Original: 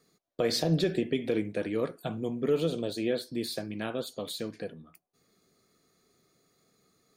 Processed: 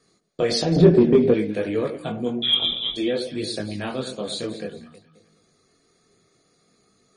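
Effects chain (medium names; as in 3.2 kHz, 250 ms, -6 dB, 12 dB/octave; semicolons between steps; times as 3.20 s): 2.42–2.96 s: frequency inversion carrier 3.7 kHz; on a send: echo whose repeats swap between lows and highs 106 ms, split 830 Hz, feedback 60%, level -9 dB; on the sum: chorus voices 2, 0.57 Hz, delay 22 ms, depth 3 ms; 0.76–1.34 s: tilt shelf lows +10 dB, about 1.4 kHz; in parallel at -7.5 dB: hard clipper -22 dBFS, distortion -8 dB; on the sum: trim +6 dB; MP3 40 kbps 44.1 kHz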